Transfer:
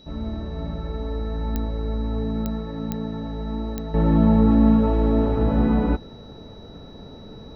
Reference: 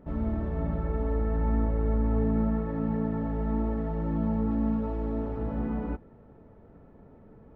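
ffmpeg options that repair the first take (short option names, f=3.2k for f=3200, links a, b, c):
-af "adeclick=t=4,bandreject=f=3.9k:w=30,agate=range=-21dB:threshold=-33dB,asetnsamples=n=441:p=0,asendcmd='3.94 volume volume -11.5dB',volume=0dB"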